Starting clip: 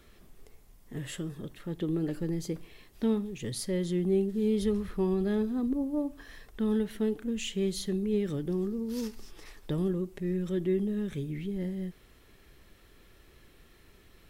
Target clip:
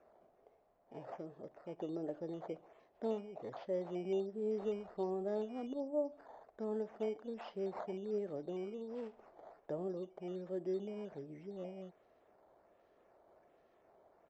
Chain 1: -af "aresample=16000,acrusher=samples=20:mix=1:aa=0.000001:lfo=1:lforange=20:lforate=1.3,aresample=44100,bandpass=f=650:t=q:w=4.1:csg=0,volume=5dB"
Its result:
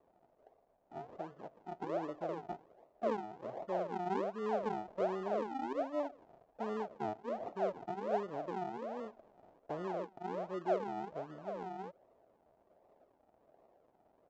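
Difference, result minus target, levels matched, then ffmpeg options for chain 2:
decimation with a swept rate: distortion +17 dB
-af "aresample=16000,acrusher=samples=4:mix=1:aa=0.000001:lfo=1:lforange=4:lforate=1.3,aresample=44100,bandpass=f=650:t=q:w=4.1:csg=0,volume=5dB"

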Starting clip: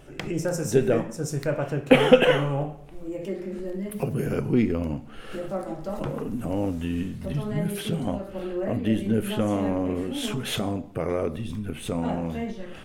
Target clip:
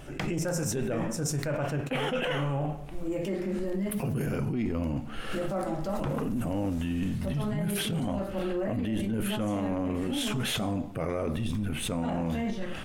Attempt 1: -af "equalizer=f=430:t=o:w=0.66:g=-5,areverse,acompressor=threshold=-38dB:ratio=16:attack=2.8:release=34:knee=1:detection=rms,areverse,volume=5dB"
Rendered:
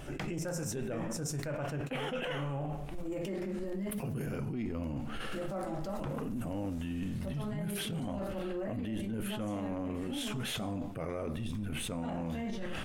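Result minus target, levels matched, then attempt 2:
compressor: peak gain reduction +6.5 dB
-af "equalizer=f=430:t=o:w=0.66:g=-5,areverse,acompressor=threshold=-31dB:ratio=16:attack=2.8:release=34:knee=1:detection=rms,areverse,volume=5dB"

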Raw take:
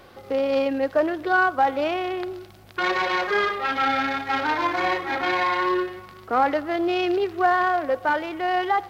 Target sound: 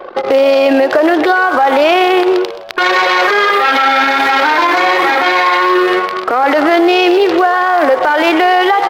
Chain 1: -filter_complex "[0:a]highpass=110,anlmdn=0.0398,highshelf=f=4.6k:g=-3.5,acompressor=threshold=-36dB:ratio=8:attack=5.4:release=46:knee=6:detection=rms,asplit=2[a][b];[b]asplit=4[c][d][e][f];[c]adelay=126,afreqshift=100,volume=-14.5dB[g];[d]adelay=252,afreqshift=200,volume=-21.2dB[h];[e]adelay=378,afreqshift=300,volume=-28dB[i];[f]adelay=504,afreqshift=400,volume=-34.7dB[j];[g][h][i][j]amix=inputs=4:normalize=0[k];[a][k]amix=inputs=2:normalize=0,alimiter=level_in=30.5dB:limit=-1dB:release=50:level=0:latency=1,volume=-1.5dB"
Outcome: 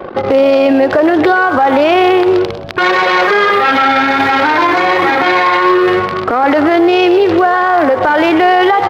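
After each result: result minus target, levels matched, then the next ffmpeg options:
125 Hz band +15.0 dB; 8000 Hz band -5.0 dB
-filter_complex "[0:a]highpass=360,anlmdn=0.0398,highshelf=f=4.6k:g=-3.5,acompressor=threshold=-36dB:ratio=8:attack=5.4:release=46:knee=6:detection=rms,asplit=2[a][b];[b]asplit=4[c][d][e][f];[c]adelay=126,afreqshift=100,volume=-14.5dB[g];[d]adelay=252,afreqshift=200,volume=-21.2dB[h];[e]adelay=378,afreqshift=300,volume=-28dB[i];[f]adelay=504,afreqshift=400,volume=-34.7dB[j];[g][h][i][j]amix=inputs=4:normalize=0[k];[a][k]amix=inputs=2:normalize=0,alimiter=level_in=30.5dB:limit=-1dB:release=50:level=0:latency=1,volume=-1.5dB"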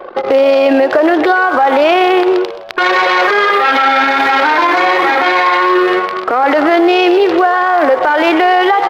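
8000 Hz band -4.5 dB
-filter_complex "[0:a]highpass=360,anlmdn=0.0398,highshelf=f=4.6k:g=4,acompressor=threshold=-36dB:ratio=8:attack=5.4:release=46:knee=6:detection=rms,asplit=2[a][b];[b]asplit=4[c][d][e][f];[c]adelay=126,afreqshift=100,volume=-14.5dB[g];[d]adelay=252,afreqshift=200,volume=-21.2dB[h];[e]adelay=378,afreqshift=300,volume=-28dB[i];[f]adelay=504,afreqshift=400,volume=-34.7dB[j];[g][h][i][j]amix=inputs=4:normalize=0[k];[a][k]amix=inputs=2:normalize=0,alimiter=level_in=30.5dB:limit=-1dB:release=50:level=0:latency=1,volume=-1.5dB"

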